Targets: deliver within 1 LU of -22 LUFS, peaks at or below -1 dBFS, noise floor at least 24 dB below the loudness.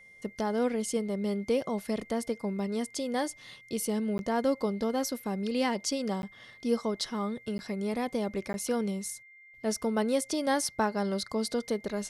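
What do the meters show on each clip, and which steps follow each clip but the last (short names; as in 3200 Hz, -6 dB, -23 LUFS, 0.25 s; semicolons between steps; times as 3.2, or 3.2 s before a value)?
dropouts 4; longest dropout 11 ms; steady tone 2100 Hz; tone level -52 dBFS; loudness -31.5 LUFS; peak -15.5 dBFS; loudness target -22.0 LUFS
-> interpolate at 4.18/6.22/7.58/8.53, 11 ms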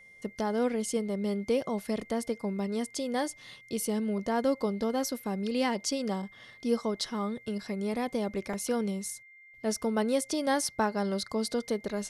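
dropouts 0; steady tone 2100 Hz; tone level -52 dBFS
-> notch 2100 Hz, Q 30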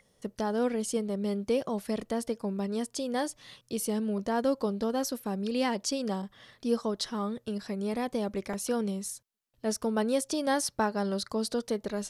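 steady tone none; loudness -31.5 LUFS; peak -16.0 dBFS; loudness target -22.0 LUFS
-> gain +9.5 dB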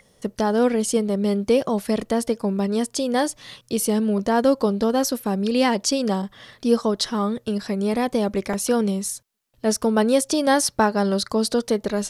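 loudness -22.0 LUFS; peak -6.5 dBFS; noise floor -60 dBFS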